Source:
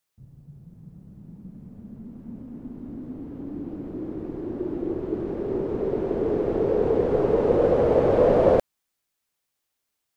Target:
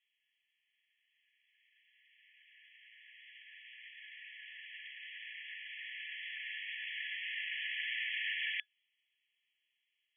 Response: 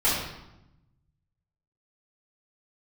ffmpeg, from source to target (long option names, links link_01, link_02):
-af "dynaudnorm=framelen=360:gausssize=13:maxgain=12dB,afftfilt=real='re*between(b*sr/4096,1700,3400)':imag='im*between(b*sr/4096,1700,3400)':win_size=4096:overlap=0.75,aderivative,volume=16dB"